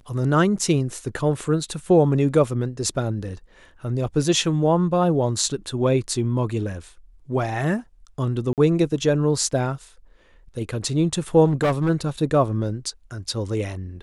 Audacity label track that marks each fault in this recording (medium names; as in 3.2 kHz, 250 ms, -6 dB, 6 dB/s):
8.530000	8.580000	dropout 48 ms
11.450000	11.900000	clipped -16 dBFS